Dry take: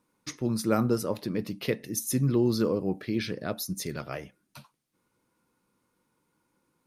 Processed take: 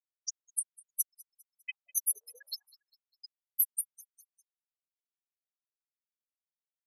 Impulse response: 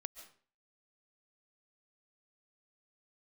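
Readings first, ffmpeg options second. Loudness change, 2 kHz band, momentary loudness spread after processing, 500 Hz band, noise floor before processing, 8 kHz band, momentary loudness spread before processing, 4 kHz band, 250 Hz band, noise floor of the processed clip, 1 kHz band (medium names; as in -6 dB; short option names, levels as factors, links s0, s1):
-5.5 dB, -10.0 dB, 13 LU, under -40 dB, -77 dBFS, +2.5 dB, 12 LU, -7.5 dB, under -40 dB, under -85 dBFS, under -40 dB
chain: -filter_complex "[0:a]aemphasis=mode=production:type=75fm,acrusher=bits=3:mix=0:aa=0.000001,bandreject=f=330.2:t=h:w=4,bandreject=f=660.4:t=h:w=4,bandreject=f=990.6:t=h:w=4,bandreject=f=1320.8:t=h:w=4,bandreject=f=1651:t=h:w=4,bandreject=f=1981.2:t=h:w=4,acrossover=split=220|1200|2400[s0][s1][s2][s3];[s0]acompressor=threshold=0.0224:ratio=4[s4];[s1]acompressor=threshold=0.0112:ratio=4[s5];[s2]acompressor=threshold=0.00708:ratio=4[s6];[s3]acompressor=threshold=0.0562:ratio=4[s7];[s4][s5][s6][s7]amix=inputs=4:normalize=0,alimiter=limit=0.15:level=0:latency=1:release=344,highpass=f=84:w=0.5412,highpass=f=84:w=1.3066,asplit=2[s8][s9];[s9]lowshelf=f=410:g=-5[s10];[1:a]atrim=start_sample=2205,highshelf=f=3900:g=-5.5[s11];[s10][s11]afir=irnorm=-1:irlink=0,volume=0.299[s12];[s8][s12]amix=inputs=2:normalize=0,aphaser=in_gain=1:out_gain=1:delay=2:decay=0.23:speed=0.77:type=triangular,afftfilt=real='re*gte(hypot(re,im),0.0891)':imag='im*gte(hypot(re,im),0.0891)':win_size=1024:overlap=0.75,aecho=1:1:201|402|603:0.0708|0.0311|0.0137,afftfilt=real='re*gte(b*sr/1024,430*pow(7400/430,0.5+0.5*sin(2*PI*0.34*pts/sr)))':imag='im*gte(b*sr/1024,430*pow(7400/430,0.5+0.5*sin(2*PI*0.34*pts/sr)))':win_size=1024:overlap=0.75,volume=1.68"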